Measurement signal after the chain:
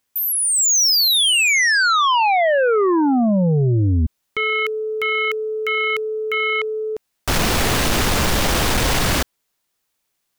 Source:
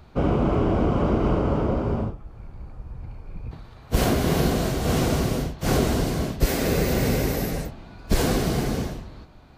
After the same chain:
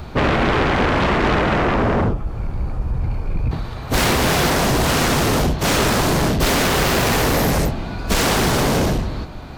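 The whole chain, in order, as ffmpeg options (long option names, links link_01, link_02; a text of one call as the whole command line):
ffmpeg -i in.wav -filter_complex "[0:a]acrossover=split=6300[link_01][link_02];[link_02]acompressor=threshold=-39dB:ratio=4:attack=1:release=60[link_03];[link_01][link_03]amix=inputs=2:normalize=0,asplit=2[link_04][link_05];[link_05]aeval=exprs='0.355*sin(PI/2*7.94*val(0)/0.355)':channel_layout=same,volume=-7dB[link_06];[link_04][link_06]amix=inputs=2:normalize=0" out.wav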